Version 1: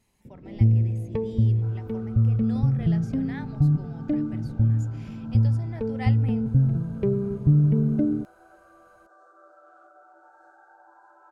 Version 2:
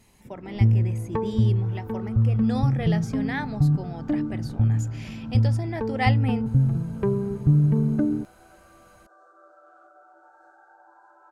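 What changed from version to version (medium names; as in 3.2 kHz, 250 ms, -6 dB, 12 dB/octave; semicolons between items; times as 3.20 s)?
speech +11.0 dB; first sound: add high-order bell 1.2 kHz +14 dB 1.2 oct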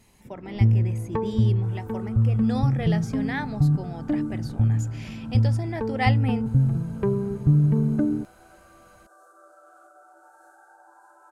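second sound: remove distance through air 160 m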